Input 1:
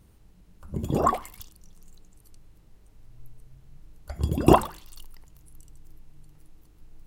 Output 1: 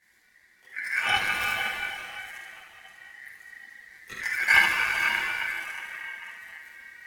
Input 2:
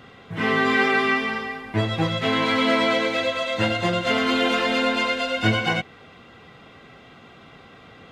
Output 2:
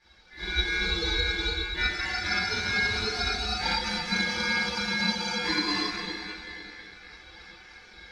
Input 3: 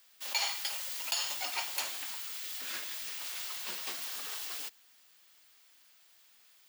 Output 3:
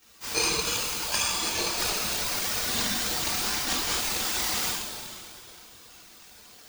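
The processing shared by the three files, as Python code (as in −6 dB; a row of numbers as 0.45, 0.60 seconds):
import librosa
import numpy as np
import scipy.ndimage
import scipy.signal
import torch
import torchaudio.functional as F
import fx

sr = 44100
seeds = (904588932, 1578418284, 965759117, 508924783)

p1 = fx.high_shelf(x, sr, hz=6700.0, db=-5.0)
p2 = p1 + 0.75 * np.pad(p1, (int(7.2 * sr / 1000.0), 0))[:len(p1)]
p3 = p2 + fx.room_early_taps(p2, sr, ms=(48, 73), db=(-6.5, -4.0), dry=0)
p4 = fx.rev_plate(p3, sr, seeds[0], rt60_s=3.5, hf_ratio=0.65, predelay_ms=0, drr_db=1.0)
p5 = fx.chorus_voices(p4, sr, voices=6, hz=0.56, base_ms=21, depth_ms=2.6, mix_pct=65)
p6 = fx.rider(p5, sr, range_db=4, speed_s=0.5)
p7 = fx.highpass(p6, sr, hz=290.0, slope=6)
p8 = fx.band_shelf(p7, sr, hz=800.0, db=-10.0, octaves=1.7)
p9 = p8 * np.sin(2.0 * np.pi * 1900.0 * np.arange(len(p8)) / sr)
y = p9 * 10.0 ** (-30 / 20.0) / np.sqrt(np.mean(np.square(p9)))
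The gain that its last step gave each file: +7.5, −4.0, +12.5 decibels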